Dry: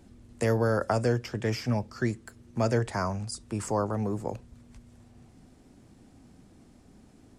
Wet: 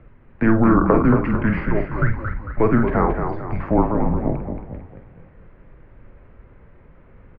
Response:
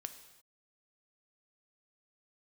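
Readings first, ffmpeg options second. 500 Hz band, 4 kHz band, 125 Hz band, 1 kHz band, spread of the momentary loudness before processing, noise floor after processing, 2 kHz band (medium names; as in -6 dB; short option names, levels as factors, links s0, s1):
+7.0 dB, under -10 dB, +7.5 dB, +10.5 dB, 9 LU, -49 dBFS, +9.0 dB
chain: -filter_complex "[0:a]bandreject=f=980:w=20,highpass=f=190:t=q:w=0.5412,highpass=f=190:t=q:w=1.307,lowpass=f=2500:t=q:w=0.5176,lowpass=f=2500:t=q:w=0.7071,lowpass=f=2500:t=q:w=1.932,afreqshift=-230,asplit=2[s0][s1];[s1]adelay=48,volume=0.398[s2];[s0][s2]amix=inputs=2:normalize=0,asplit=7[s3][s4][s5][s6][s7][s8][s9];[s4]adelay=225,afreqshift=-37,volume=0.473[s10];[s5]adelay=450,afreqshift=-74,volume=0.226[s11];[s6]adelay=675,afreqshift=-111,volume=0.108[s12];[s7]adelay=900,afreqshift=-148,volume=0.0525[s13];[s8]adelay=1125,afreqshift=-185,volume=0.0251[s14];[s9]adelay=1350,afreqshift=-222,volume=0.012[s15];[s3][s10][s11][s12][s13][s14][s15]amix=inputs=7:normalize=0,asplit=2[s16][s17];[1:a]atrim=start_sample=2205,afade=t=out:st=0.17:d=0.01,atrim=end_sample=7938[s18];[s17][s18]afir=irnorm=-1:irlink=0,volume=0.891[s19];[s16][s19]amix=inputs=2:normalize=0,volume=2.24"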